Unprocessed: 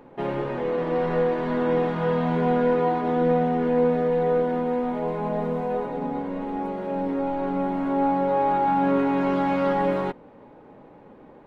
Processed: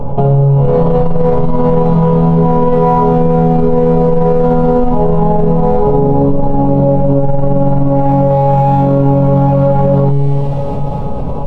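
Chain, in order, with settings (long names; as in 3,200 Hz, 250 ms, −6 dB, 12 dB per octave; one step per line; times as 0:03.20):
spectral tilt −3 dB per octave
phaser with its sweep stopped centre 760 Hz, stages 4
in parallel at −9 dB: hard clipping −24 dBFS, distortion −9 dB
on the sum: low-shelf EQ 400 Hz +10.5 dB
tuned comb filter 140 Hz, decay 1.1 s, harmonics all, mix 90%
on a send: delay with a high-pass on its return 244 ms, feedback 73%, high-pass 3,200 Hz, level −9 dB
on the sum: boost into a limiter +31 dB
envelope flattener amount 50%
level −3 dB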